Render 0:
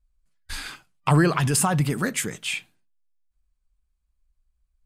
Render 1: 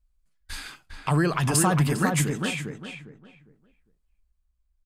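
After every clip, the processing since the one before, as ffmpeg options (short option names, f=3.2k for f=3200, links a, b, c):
-filter_complex "[0:a]tremolo=f=0.53:d=0.46,asplit=2[a][b];[b]adelay=404,lowpass=f=1.6k:p=1,volume=-3dB,asplit=2[c][d];[d]adelay=404,lowpass=f=1.6k:p=1,volume=0.28,asplit=2[e][f];[f]adelay=404,lowpass=f=1.6k:p=1,volume=0.28,asplit=2[g][h];[h]adelay=404,lowpass=f=1.6k:p=1,volume=0.28[i];[a][c][e][g][i]amix=inputs=5:normalize=0"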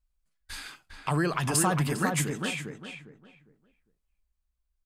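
-af "lowshelf=f=180:g=-5.5,volume=-2.5dB"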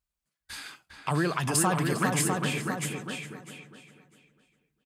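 -af "highpass=88,aecho=1:1:650|1300|1950:0.562|0.09|0.0144"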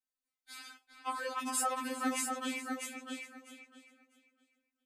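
-af "afftfilt=real='re*3.46*eq(mod(b,12),0)':imag='im*3.46*eq(mod(b,12),0)':win_size=2048:overlap=0.75,volume=-5dB"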